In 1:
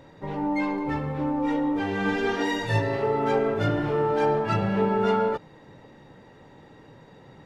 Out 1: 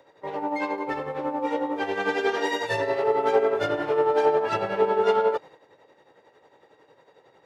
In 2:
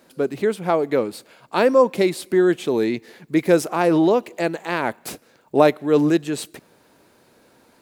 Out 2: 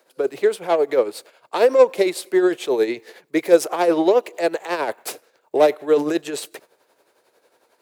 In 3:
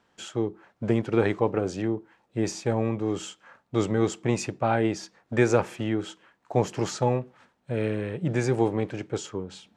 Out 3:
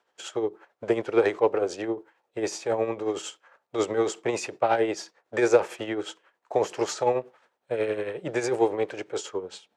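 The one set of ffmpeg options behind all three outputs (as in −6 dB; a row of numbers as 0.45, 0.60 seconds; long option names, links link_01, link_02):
-filter_complex "[0:a]acrossover=split=330|570|3500[link_01][link_02][link_03][link_04];[link_03]asoftclip=type=tanh:threshold=-23dB[link_05];[link_01][link_02][link_05][link_04]amix=inputs=4:normalize=0,tremolo=f=11:d=0.57,lowshelf=frequency=310:width_type=q:width=1.5:gain=-11.5,agate=range=-7dB:threshold=-48dB:ratio=16:detection=peak,highpass=frequency=110:poles=1,volume=4dB"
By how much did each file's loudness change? +0.5, +0.5, 0.0 LU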